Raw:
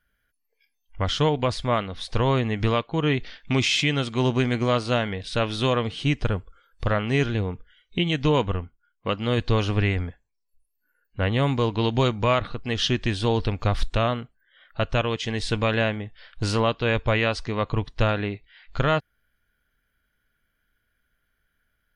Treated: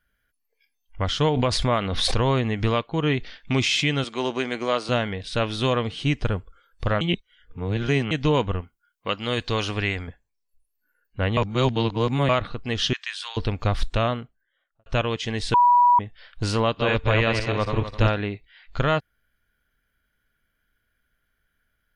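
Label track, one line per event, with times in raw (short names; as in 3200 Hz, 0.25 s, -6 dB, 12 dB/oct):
1.240000	2.630000	backwards sustainer at most 27 dB/s
4.040000	4.890000	HPF 330 Hz
7.010000	8.110000	reverse
8.610000	10.080000	tilt +2 dB/oct
11.370000	12.290000	reverse
12.930000	13.370000	HPF 1200 Hz 24 dB/oct
14.040000	14.860000	studio fade out
15.540000	15.990000	bleep 973 Hz -12.5 dBFS
16.630000	18.170000	regenerating reverse delay 0.128 s, feedback 47%, level -4.5 dB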